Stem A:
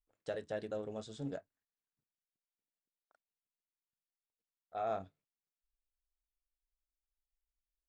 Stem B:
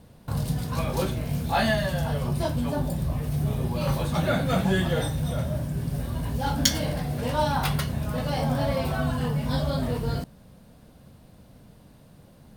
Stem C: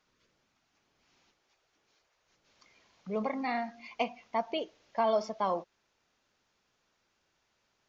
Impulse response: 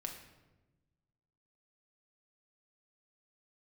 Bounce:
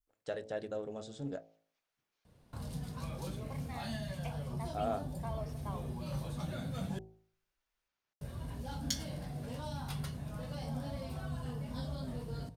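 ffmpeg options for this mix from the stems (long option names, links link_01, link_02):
-filter_complex "[0:a]volume=1.5dB[link_01];[1:a]lowpass=12000,acrossover=split=280|3000[link_02][link_03][link_04];[link_03]acompressor=threshold=-33dB:ratio=3[link_05];[link_02][link_05][link_04]amix=inputs=3:normalize=0,flanger=delay=1.7:depth=7.1:regen=-70:speed=0.33:shape=triangular,adelay=2250,volume=-8dB,asplit=3[link_06][link_07][link_08];[link_06]atrim=end=6.99,asetpts=PTS-STARTPTS,afade=type=out:start_time=6.986:duration=0.004:curve=hsin[link_09];[link_07]atrim=start=6.99:end=8.21,asetpts=PTS-STARTPTS,volume=0[link_10];[link_08]atrim=start=8.21,asetpts=PTS-STARTPTS,afade=type=in:duration=0.004:curve=hsin[link_11];[link_09][link_10][link_11]concat=n=3:v=0:a=1[link_12];[2:a]equalizer=frequency=2000:width=0.41:gain=5,adelay=250,volume=-17.5dB[link_13];[link_01][link_12][link_13]amix=inputs=3:normalize=0,bandreject=frequency=54.43:width_type=h:width=4,bandreject=frequency=108.86:width_type=h:width=4,bandreject=frequency=163.29:width_type=h:width=4,bandreject=frequency=217.72:width_type=h:width=4,bandreject=frequency=272.15:width_type=h:width=4,bandreject=frequency=326.58:width_type=h:width=4,bandreject=frequency=381.01:width_type=h:width=4,bandreject=frequency=435.44:width_type=h:width=4,bandreject=frequency=489.87:width_type=h:width=4,bandreject=frequency=544.3:width_type=h:width=4,bandreject=frequency=598.73:width_type=h:width=4,bandreject=frequency=653.16:width_type=h:width=4,bandreject=frequency=707.59:width_type=h:width=4,bandreject=frequency=762.02:width_type=h:width=4,bandreject=frequency=816.45:width_type=h:width=4,bandreject=frequency=870.88:width_type=h:width=4,bandreject=frequency=925.31:width_type=h:width=4,adynamicequalizer=threshold=0.00158:dfrequency=2300:dqfactor=0.71:tfrequency=2300:tqfactor=0.71:attack=5:release=100:ratio=0.375:range=1.5:mode=cutabove:tftype=bell"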